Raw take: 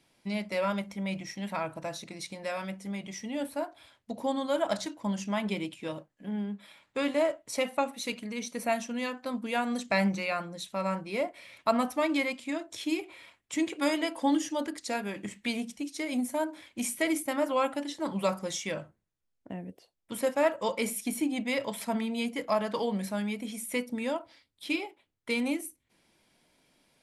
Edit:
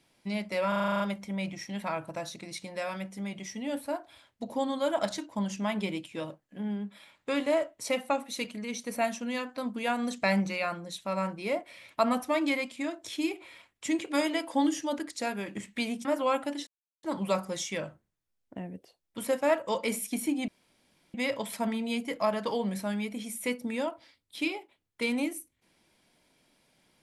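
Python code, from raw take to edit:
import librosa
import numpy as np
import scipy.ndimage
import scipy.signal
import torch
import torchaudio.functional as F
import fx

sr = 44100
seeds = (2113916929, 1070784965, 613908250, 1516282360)

y = fx.edit(x, sr, fx.stutter(start_s=0.68, slice_s=0.04, count=9),
    fx.cut(start_s=15.73, length_s=1.62),
    fx.insert_silence(at_s=17.97, length_s=0.36),
    fx.insert_room_tone(at_s=21.42, length_s=0.66), tone=tone)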